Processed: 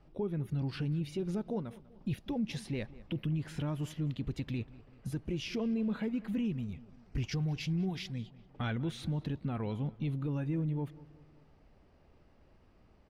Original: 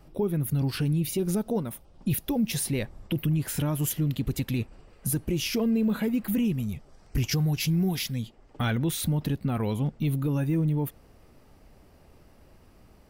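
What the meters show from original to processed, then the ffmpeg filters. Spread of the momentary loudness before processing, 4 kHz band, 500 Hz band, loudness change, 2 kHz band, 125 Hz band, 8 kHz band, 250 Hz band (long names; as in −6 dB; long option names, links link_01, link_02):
7 LU, −10.5 dB, −8.0 dB, −8.5 dB, −8.5 dB, −8.0 dB, −20.5 dB, −8.0 dB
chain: -filter_complex "[0:a]lowpass=4200,asplit=2[link_01][link_02];[link_02]adelay=194,lowpass=frequency=2900:poles=1,volume=-19.5dB,asplit=2[link_03][link_04];[link_04]adelay=194,lowpass=frequency=2900:poles=1,volume=0.51,asplit=2[link_05][link_06];[link_06]adelay=194,lowpass=frequency=2900:poles=1,volume=0.51,asplit=2[link_07][link_08];[link_08]adelay=194,lowpass=frequency=2900:poles=1,volume=0.51[link_09];[link_03][link_05][link_07][link_09]amix=inputs=4:normalize=0[link_10];[link_01][link_10]amix=inputs=2:normalize=0,volume=-8dB"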